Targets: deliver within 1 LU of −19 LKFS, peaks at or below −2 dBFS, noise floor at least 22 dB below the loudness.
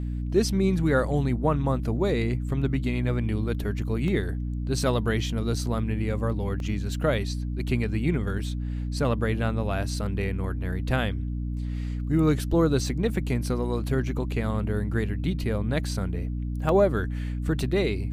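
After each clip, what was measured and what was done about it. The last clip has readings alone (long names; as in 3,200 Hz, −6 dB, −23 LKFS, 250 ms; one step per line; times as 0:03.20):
number of dropouts 4; longest dropout 1.3 ms; mains hum 60 Hz; hum harmonics up to 300 Hz; level of the hum −27 dBFS; integrated loudness −27.0 LKFS; sample peak −9.5 dBFS; target loudness −19.0 LKFS
→ repair the gap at 0:04.08/0:05.66/0:06.60/0:16.69, 1.3 ms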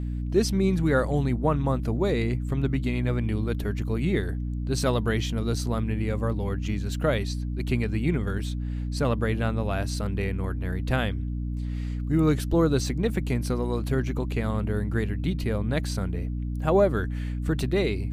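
number of dropouts 0; mains hum 60 Hz; hum harmonics up to 300 Hz; level of the hum −27 dBFS
→ hum removal 60 Hz, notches 5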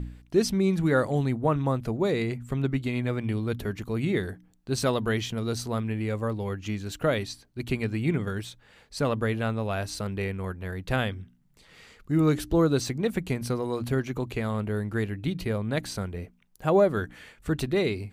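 mains hum none found; integrated loudness −28.0 LKFS; sample peak −10.0 dBFS; target loudness −19.0 LKFS
→ level +9 dB
brickwall limiter −2 dBFS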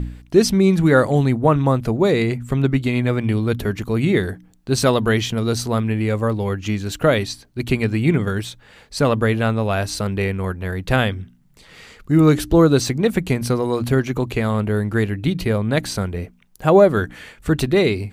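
integrated loudness −19.0 LKFS; sample peak −2.0 dBFS; background noise floor −51 dBFS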